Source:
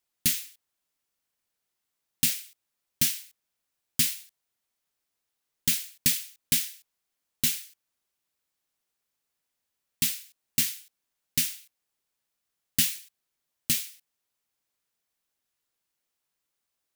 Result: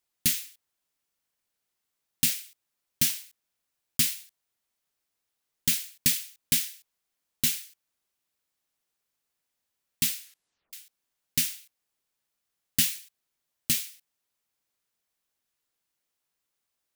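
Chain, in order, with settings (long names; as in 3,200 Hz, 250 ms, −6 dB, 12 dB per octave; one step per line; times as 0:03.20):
0:03.09–0:04.03: one scale factor per block 5 bits
0:10.20: tape stop 0.53 s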